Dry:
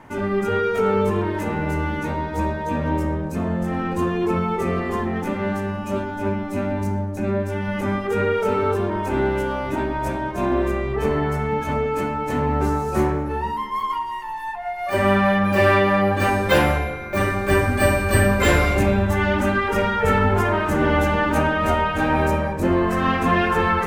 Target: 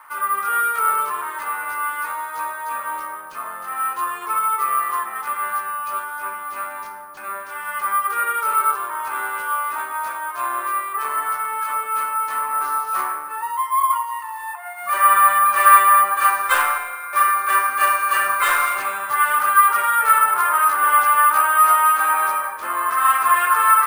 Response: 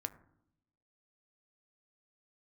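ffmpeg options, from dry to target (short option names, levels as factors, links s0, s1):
-af "highpass=f=1200:t=q:w=6.9,acrusher=samples=4:mix=1:aa=0.000001,volume=0.708"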